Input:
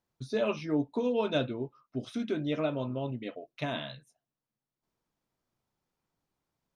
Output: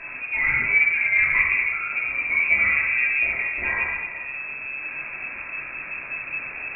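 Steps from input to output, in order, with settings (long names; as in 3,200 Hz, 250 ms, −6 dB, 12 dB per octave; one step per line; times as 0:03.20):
converter with a step at zero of −35 dBFS
rectangular room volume 730 cubic metres, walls mixed, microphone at 2.9 metres
voice inversion scrambler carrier 2,600 Hz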